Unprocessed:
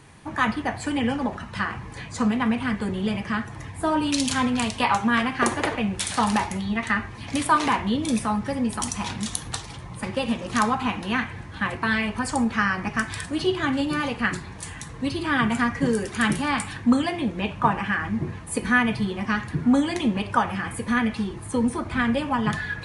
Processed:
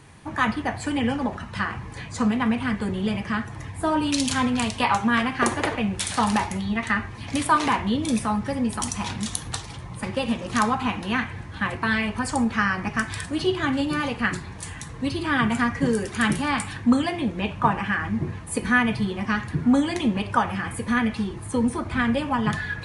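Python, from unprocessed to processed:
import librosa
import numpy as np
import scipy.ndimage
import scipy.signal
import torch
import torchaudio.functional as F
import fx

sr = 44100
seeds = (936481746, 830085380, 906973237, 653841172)

y = fx.peak_eq(x, sr, hz=89.0, db=2.5, octaves=1.1)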